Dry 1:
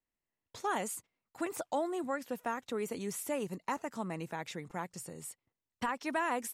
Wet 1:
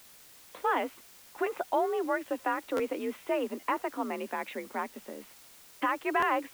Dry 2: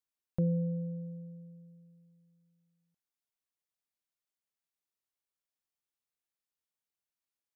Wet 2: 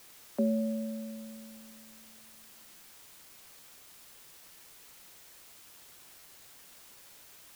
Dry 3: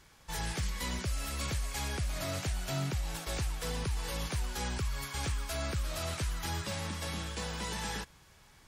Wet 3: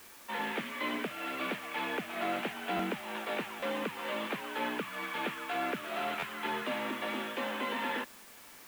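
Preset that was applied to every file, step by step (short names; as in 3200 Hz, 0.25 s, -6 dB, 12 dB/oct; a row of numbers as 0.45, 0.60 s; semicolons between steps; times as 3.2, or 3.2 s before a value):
mistuned SSB +51 Hz 190–3100 Hz; requantised 10-bit, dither triangular; stuck buffer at 2.76/3.59/6.19, samples 512, times 2; gain +5.5 dB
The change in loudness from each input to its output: +5.5, -1.0, +0.5 LU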